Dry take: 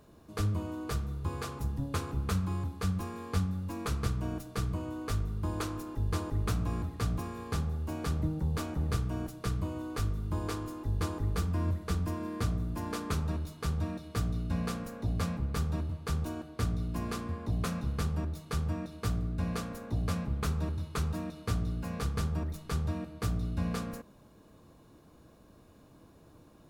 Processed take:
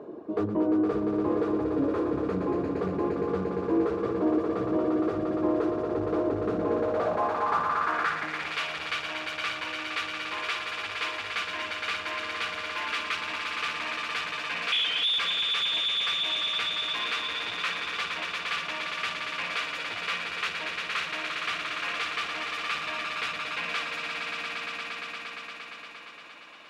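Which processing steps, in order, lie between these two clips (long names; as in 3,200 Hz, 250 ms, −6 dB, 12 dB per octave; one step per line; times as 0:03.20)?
0:14.72–0:15.18: voice inversion scrambler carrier 3,600 Hz
reverb reduction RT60 1.8 s
on a send: echo that builds up and dies away 116 ms, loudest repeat 5, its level −10.5 dB
on the sum: mid-hump overdrive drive 30 dB, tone 2,100 Hz, clips at −15 dBFS
band-pass filter sweep 370 Hz → 2,600 Hz, 0:06.55–0:08.57
level +6.5 dB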